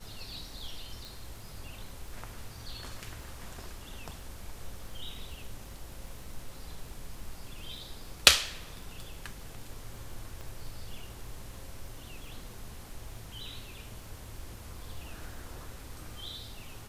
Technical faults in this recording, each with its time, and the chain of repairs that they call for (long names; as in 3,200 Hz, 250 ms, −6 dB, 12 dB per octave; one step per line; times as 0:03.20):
surface crackle 50 per second −45 dBFS
0:01.05: click
0:10.41: click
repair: click removal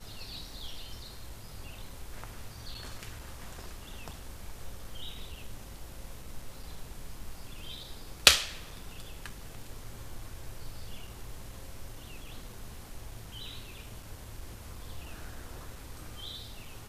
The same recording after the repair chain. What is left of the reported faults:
0:10.41: click